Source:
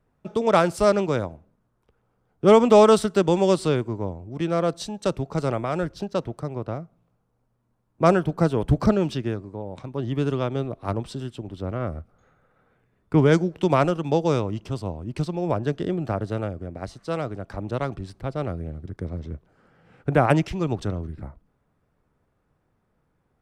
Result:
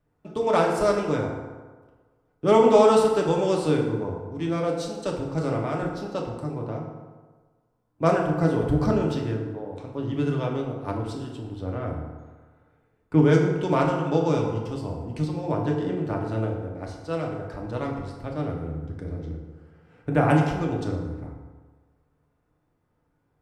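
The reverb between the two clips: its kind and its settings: FDN reverb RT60 1.4 s, low-frequency decay 0.9×, high-frequency decay 0.55×, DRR -1 dB; trim -5.5 dB

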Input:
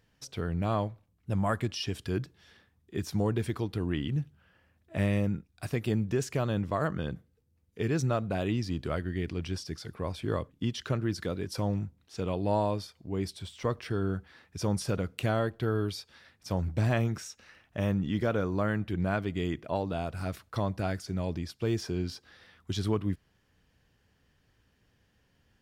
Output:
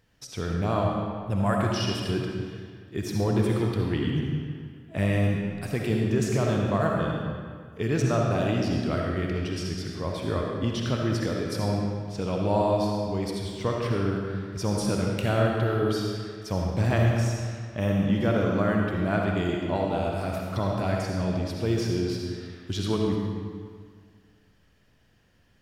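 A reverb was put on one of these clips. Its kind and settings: algorithmic reverb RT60 1.9 s, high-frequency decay 0.8×, pre-delay 25 ms, DRR -1 dB; trim +2 dB

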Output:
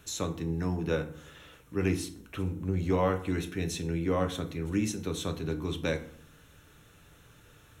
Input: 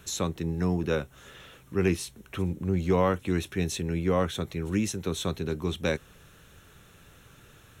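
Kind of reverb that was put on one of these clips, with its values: FDN reverb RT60 0.58 s, low-frequency decay 1.35×, high-frequency decay 0.65×, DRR 6 dB; trim -4 dB

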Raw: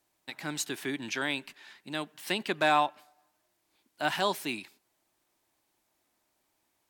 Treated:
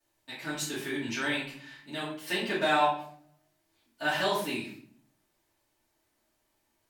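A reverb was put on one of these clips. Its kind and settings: simulated room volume 72 m³, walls mixed, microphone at 2.6 m; trim -10 dB

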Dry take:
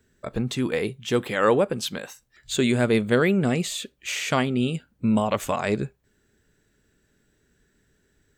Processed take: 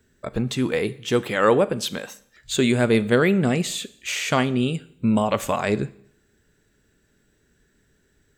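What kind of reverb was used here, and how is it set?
Schroeder reverb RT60 0.66 s, combs from 27 ms, DRR 17 dB; trim +2 dB

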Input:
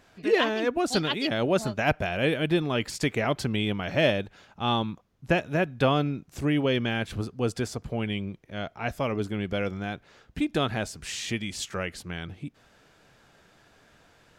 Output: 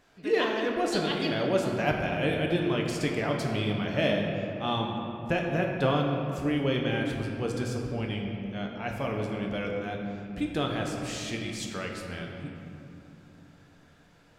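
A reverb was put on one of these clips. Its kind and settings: simulated room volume 120 m³, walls hard, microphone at 0.38 m; trim -5 dB

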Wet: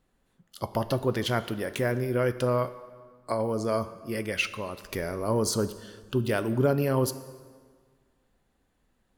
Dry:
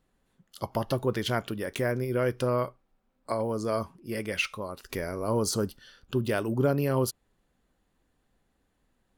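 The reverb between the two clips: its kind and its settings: plate-style reverb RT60 1.7 s, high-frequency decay 0.75×, DRR 12.5 dB; trim +1 dB

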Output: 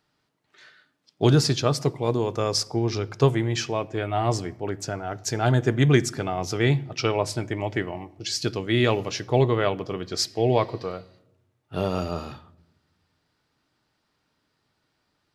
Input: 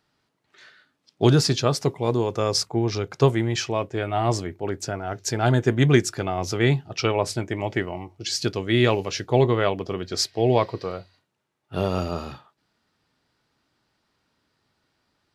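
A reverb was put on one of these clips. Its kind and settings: simulated room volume 3400 m³, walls furnished, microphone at 0.45 m; trim -1.5 dB

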